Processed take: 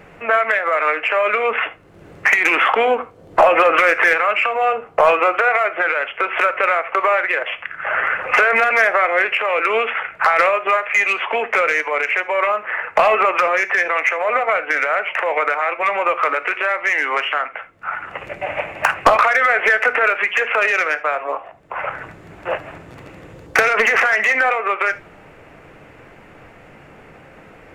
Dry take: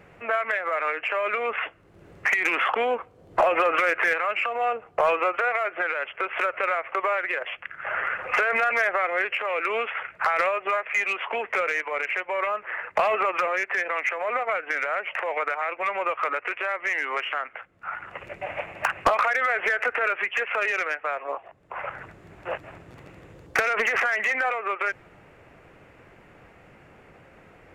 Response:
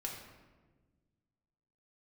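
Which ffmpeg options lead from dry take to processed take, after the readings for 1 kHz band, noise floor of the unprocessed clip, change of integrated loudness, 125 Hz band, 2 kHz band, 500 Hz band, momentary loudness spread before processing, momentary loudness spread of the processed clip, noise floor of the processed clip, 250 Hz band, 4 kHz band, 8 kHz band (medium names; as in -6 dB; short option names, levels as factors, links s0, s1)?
+8.5 dB, -53 dBFS, +8.5 dB, no reading, +8.5 dB, +8.5 dB, 12 LU, 12 LU, -44 dBFS, +8.0 dB, +8.5 dB, +8.5 dB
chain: -filter_complex "[0:a]bandreject=f=60:t=h:w=6,bandreject=f=120:t=h:w=6,bandreject=f=180:t=h:w=6,bandreject=f=240:t=h:w=6,asplit=2[s0][s1];[1:a]atrim=start_sample=2205,atrim=end_sample=3969[s2];[s1][s2]afir=irnorm=-1:irlink=0,volume=0.596[s3];[s0][s3]amix=inputs=2:normalize=0,volume=1.88"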